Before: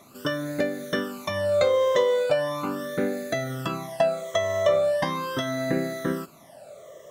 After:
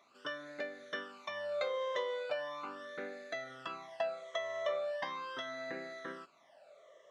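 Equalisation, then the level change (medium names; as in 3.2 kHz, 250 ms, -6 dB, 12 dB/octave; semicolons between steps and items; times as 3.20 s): differentiator; tape spacing loss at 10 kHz 44 dB; bass shelf 250 Hz -8 dB; +10.5 dB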